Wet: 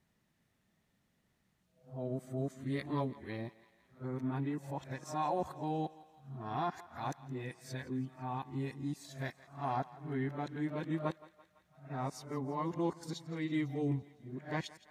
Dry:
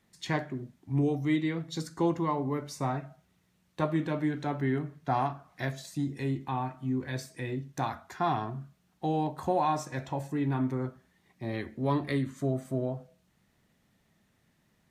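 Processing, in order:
played backwards from end to start
feedback echo with a high-pass in the loop 168 ms, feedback 63%, high-pass 550 Hz, level −17.5 dB
level −7 dB

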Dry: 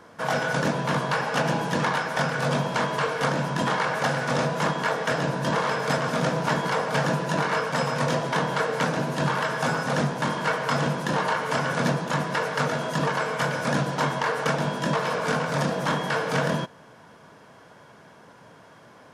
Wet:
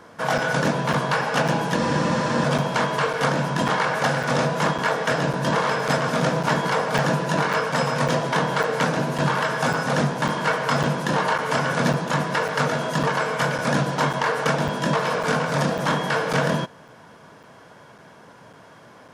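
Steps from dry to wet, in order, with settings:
regular buffer underruns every 0.55 s, samples 256, zero, from 0:00.38
frozen spectrum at 0:01.79, 0.66 s
level +3 dB

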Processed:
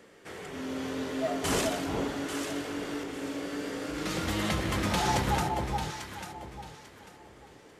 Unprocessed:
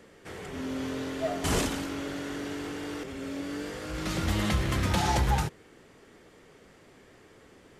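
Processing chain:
low-shelf EQ 130 Hz −10.5 dB
on a send: delay that swaps between a low-pass and a high-pass 422 ms, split 1,000 Hz, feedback 50%, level −2 dB

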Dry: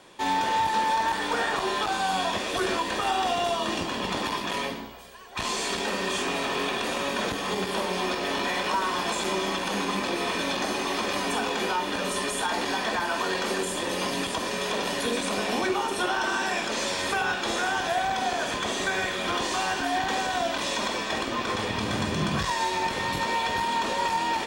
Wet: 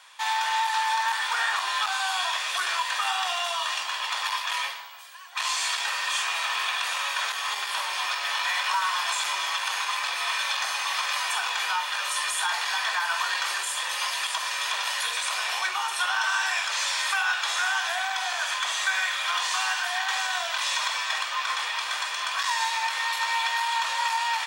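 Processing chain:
high-pass filter 980 Hz 24 dB per octave
level +3.5 dB

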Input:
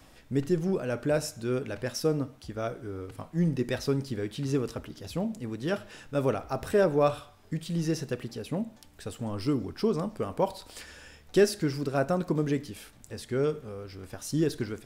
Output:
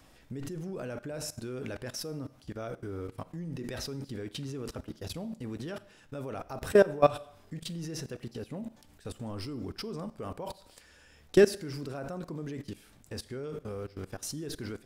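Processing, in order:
output level in coarse steps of 21 dB
four-comb reverb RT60 0.7 s, combs from 32 ms, DRR 19.5 dB
level +4.5 dB

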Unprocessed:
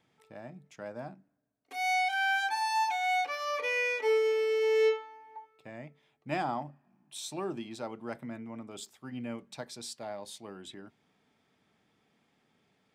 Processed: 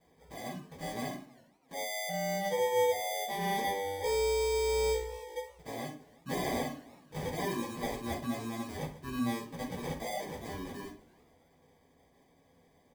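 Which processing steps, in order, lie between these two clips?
spectral magnitudes quantised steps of 30 dB
treble cut that deepens with the level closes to 840 Hz, closed at −28 dBFS
notch filter 500 Hz, Q 12
gate on every frequency bin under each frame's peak −15 dB strong
comb filter 3 ms, depth 48%
decimation without filtering 32×
soft clipping −35 dBFS, distortion −9 dB
convolution reverb RT60 0.40 s, pre-delay 3 ms, DRR −6 dB
feedback echo with a swinging delay time 326 ms, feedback 31%, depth 218 cents, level −23.5 dB

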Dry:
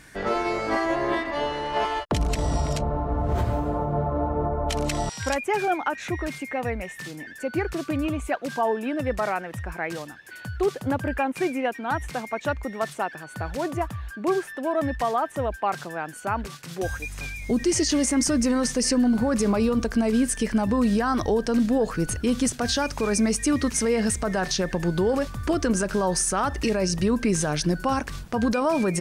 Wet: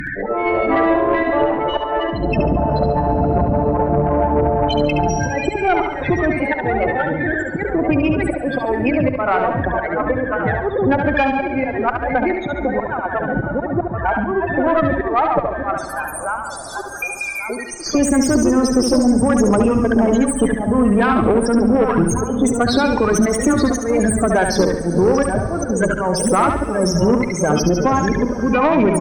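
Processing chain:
feedback delay that plays each chunk backwards 565 ms, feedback 56%, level −8 dB
parametric band 70 Hz −3.5 dB 2.1 octaves
harmonic and percussive parts rebalanced percussive +7 dB
0:15.77–0:17.95: first difference
volume swells 301 ms
spectral peaks only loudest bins 16
tube saturation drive 15 dB, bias 0.45
repeating echo 70 ms, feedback 36%, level −6 dB
dense smooth reverb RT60 4.8 s, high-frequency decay 0.65×, DRR 19 dB
multiband upward and downward compressor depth 70%
level +9 dB

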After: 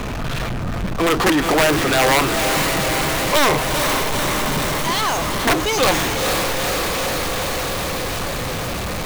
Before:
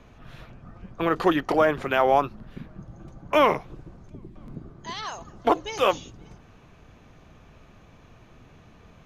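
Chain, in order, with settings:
wrap-around overflow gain 12 dB
feedback delay with all-pass diffusion 464 ms, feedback 68%, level −11.5 dB
power curve on the samples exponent 0.35

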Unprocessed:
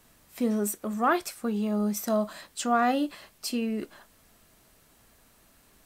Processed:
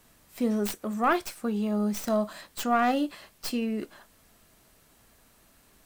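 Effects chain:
stylus tracing distortion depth 0.13 ms

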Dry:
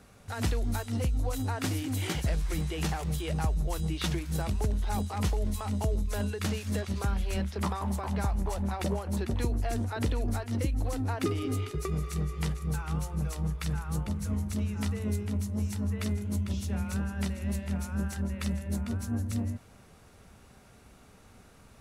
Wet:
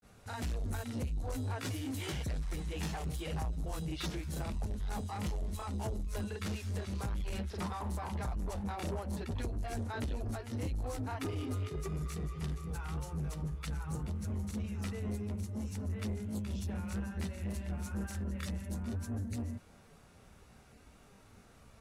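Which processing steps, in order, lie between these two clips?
granular cloud 121 ms, grains 28 per second, spray 27 ms, pitch spread up and down by 0 semitones
soft clipping −31.5 dBFS, distortion −12 dB

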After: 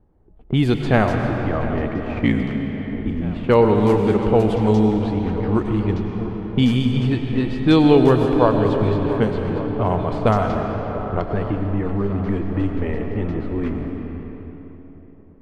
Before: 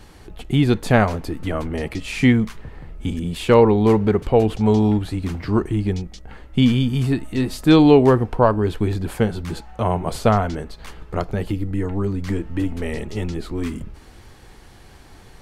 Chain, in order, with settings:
0:02.18–0:03.07: ring modulation 28 Hz
on a send: feedback echo with a long and a short gap by turns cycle 1,150 ms, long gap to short 1.5 to 1, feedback 54%, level −16 dB
on the sum: low-pass that shuts in the quiet parts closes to 580 Hz, open at −11.5 dBFS
noise gate −30 dBFS, range −18 dB
comb and all-pass reverb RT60 3.4 s, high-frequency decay 0.7×, pre-delay 65 ms, DRR 5 dB
in parallel at +3 dB: downward compressor, threshold −29 dBFS, peak gain reduction 20.5 dB
on the sum: level −3 dB

